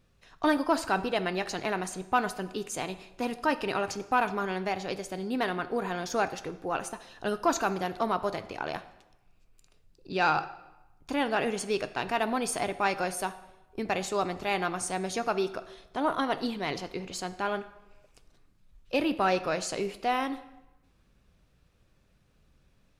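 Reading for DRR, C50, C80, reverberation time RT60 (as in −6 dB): 11.0 dB, 14.5 dB, 16.5 dB, 0.95 s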